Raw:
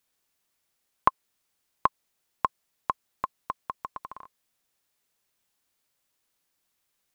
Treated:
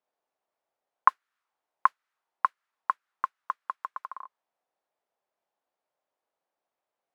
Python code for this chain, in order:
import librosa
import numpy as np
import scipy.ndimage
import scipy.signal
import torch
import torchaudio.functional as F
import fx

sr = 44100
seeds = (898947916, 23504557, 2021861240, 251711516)

y = fx.mod_noise(x, sr, seeds[0], snr_db=23)
y = fx.auto_wah(y, sr, base_hz=670.0, top_hz=1400.0, q=2.1, full_db=-36.5, direction='up')
y = y * 10.0 ** (5.5 / 20.0)